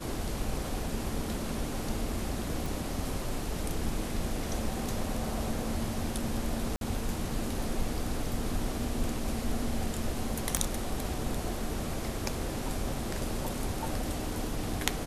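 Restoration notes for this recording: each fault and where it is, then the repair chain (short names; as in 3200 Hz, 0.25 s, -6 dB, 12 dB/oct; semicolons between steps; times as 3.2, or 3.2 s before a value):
2.66 pop
6.76–6.81 gap 52 ms
10.57 pop -12 dBFS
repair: de-click; interpolate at 6.76, 52 ms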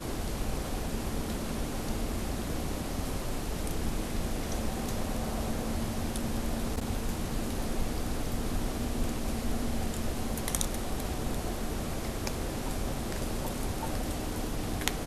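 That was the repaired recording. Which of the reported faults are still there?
none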